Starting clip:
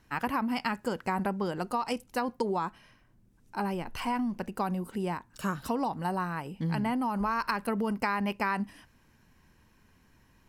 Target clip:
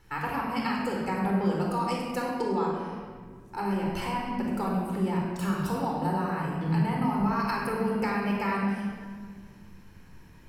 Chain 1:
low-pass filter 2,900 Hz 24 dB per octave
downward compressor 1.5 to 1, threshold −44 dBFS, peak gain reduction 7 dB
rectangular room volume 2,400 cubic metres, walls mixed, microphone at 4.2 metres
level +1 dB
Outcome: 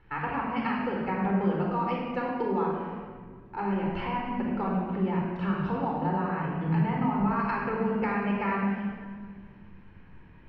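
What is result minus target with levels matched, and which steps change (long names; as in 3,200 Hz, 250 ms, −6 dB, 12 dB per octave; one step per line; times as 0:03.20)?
4,000 Hz band −6.0 dB
remove: low-pass filter 2,900 Hz 24 dB per octave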